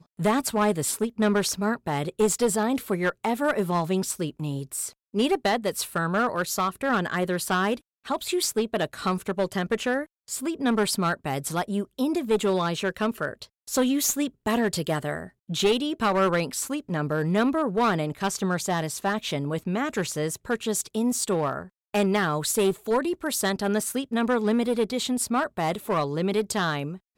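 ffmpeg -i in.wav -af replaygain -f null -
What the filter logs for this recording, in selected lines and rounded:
track_gain = +6.5 dB
track_peak = 0.212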